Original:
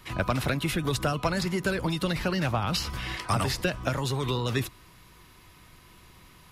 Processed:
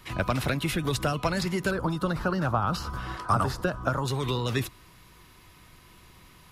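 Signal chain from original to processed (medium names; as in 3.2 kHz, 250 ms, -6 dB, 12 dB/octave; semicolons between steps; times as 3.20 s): 1.71–4.08 s: resonant high shelf 1.7 kHz -7 dB, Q 3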